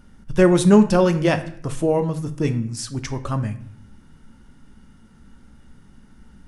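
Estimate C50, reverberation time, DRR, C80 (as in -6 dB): 13.5 dB, 0.55 s, 8.5 dB, 16.5 dB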